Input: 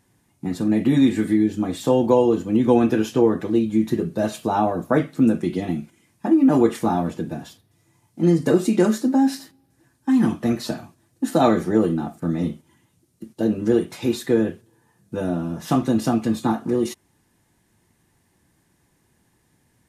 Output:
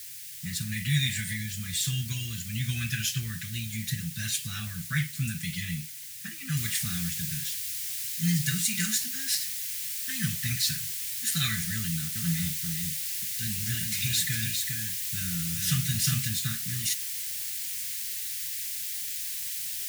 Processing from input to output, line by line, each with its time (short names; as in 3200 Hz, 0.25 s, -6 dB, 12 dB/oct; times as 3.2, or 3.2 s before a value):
6.57 noise floor step -51 dB -43 dB
11.75–16.28 echo 0.404 s -5 dB
whole clip: elliptic band-stop 150–1800 Hz, stop band 40 dB; high shelf 2400 Hz +10 dB